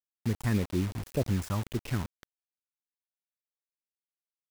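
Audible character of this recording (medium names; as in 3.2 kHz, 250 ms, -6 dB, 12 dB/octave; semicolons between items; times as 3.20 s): phasing stages 4, 1.8 Hz, lowest notch 460–1600 Hz; a quantiser's noise floor 6-bit, dither none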